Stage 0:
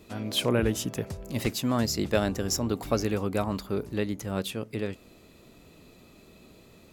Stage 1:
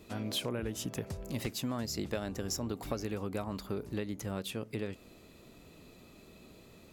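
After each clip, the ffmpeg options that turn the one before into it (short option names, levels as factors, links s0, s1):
-af "acompressor=threshold=0.0316:ratio=6,volume=0.794"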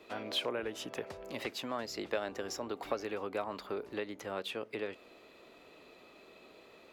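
-filter_complex "[0:a]acrossover=split=350 4100:gain=0.0891 1 0.178[s0][s1][s2];[s0][s1][s2]amix=inputs=3:normalize=0,volume=1.58"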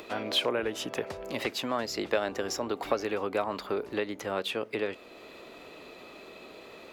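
-af "acompressor=mode=upward:threshold=0.00355:ratio=2.5,volume=2.24"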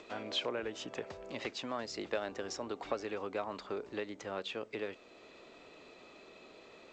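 -af "volume=0.398" -ar 16000 -c:a g722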